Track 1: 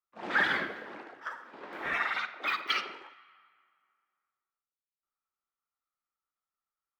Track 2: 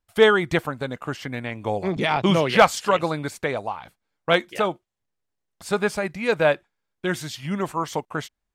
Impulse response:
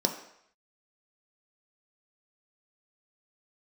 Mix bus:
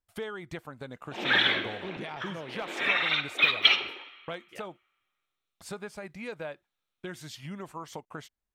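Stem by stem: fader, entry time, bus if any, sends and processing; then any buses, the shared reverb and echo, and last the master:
−2.0 dB, 0.95 s, send −14 dB, flat-topped bell 3,100 Hz +13 dB 1.1 octaves
−8.0 dB, 0.00 s, no send, downward compressor 4 to 1, threshold −29 dBFS, peak gain reduction 16.5 dB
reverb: on, RT60 0.70 s, pre-delay 3 ms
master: no processing

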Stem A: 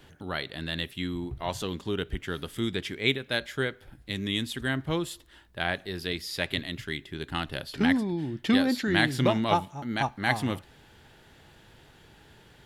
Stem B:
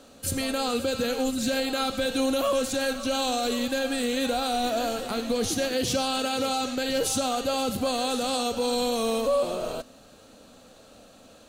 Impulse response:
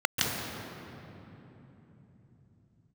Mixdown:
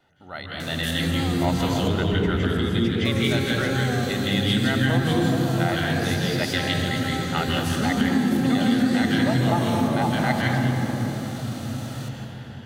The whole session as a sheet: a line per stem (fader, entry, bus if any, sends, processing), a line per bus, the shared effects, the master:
−13.5 dB, 0.00 s, send −5.5 dB, automatic gain control gain up to 15.5 dB
−4.0 dB, 0.60 s, muted 0:01.88–0:03.05, send −22.5 dB, spectral envelope flattened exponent 0.6; envelope flattener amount 70%; automatic ducking −8 dB, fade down 0.85 s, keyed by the first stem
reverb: on, RT60 3.5 s, pre-delay 133 ms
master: downward compressor, threshold −16 dBFS, peak gain reduction 5 dB

